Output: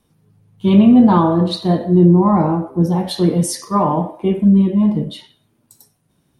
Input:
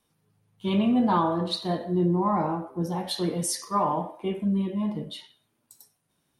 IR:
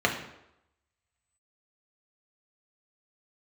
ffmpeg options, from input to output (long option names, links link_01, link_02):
-af "lowshelf=frequency=450:gain=11,volume=5dB"